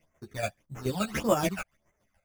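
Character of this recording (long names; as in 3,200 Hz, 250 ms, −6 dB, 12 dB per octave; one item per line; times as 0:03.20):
aliases and images of a low sample rate 4,100 Hz, jitter 0%
phaser sweep stages 12, 1.7 Hz, lowest notch 310–4,400 Hz
chopped level 7 Hz, depth 60%, duty 30%
a shimmering, thickened sound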